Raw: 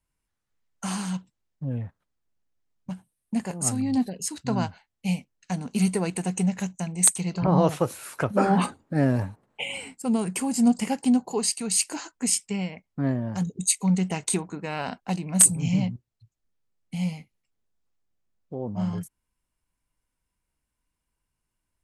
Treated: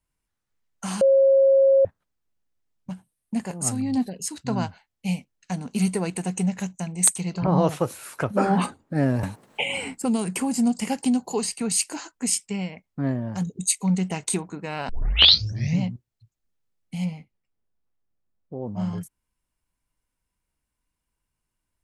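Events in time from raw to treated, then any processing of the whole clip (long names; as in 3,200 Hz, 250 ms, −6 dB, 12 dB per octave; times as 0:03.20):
0:01.01–0:01.85: beep over 542 Hz −13 dBFS
0:09.23–0:11.72: multiband upward and downward compressor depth 70%
0:14.89: tape start 0.92 s
0:17.04–0:18.61: low-pass filter 2,100 Hz → 1,300 Hz 6 dB per octave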